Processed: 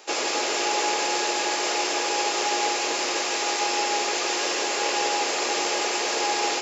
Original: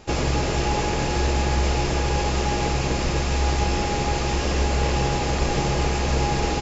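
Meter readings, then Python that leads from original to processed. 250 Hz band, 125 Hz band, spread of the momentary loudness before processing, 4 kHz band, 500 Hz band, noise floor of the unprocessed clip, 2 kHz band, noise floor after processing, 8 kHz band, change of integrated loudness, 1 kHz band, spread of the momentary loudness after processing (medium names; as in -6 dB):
-7.5 dB, under -35 dB, 1 LU, +4.5 dB, -2.0 dB, -24 dBFS, +3.0 dB, -27 dBFS, no reading, -0.5 dB, +1.0 dB, 1 LU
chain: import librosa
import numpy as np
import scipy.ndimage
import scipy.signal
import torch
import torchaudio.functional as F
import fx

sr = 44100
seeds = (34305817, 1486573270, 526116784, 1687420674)

y = scipy.signal.sosfilt(scipy.signal.butter(4, 340.0, 'highpass', fs=sr, output='sos'), x)
y = fx.tilt_eq(y, sr, slope=2.0)
y = fx.echo_crushed(y, sr, ms=167, feedback_pct=35, bits=9, wet_db=-8.0)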